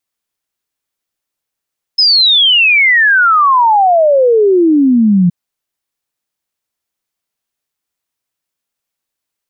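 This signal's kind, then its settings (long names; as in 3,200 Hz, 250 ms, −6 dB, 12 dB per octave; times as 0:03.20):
exponential sine sweep 5,200 Hz → 170 Hz 3.32 s −5.5 dBFS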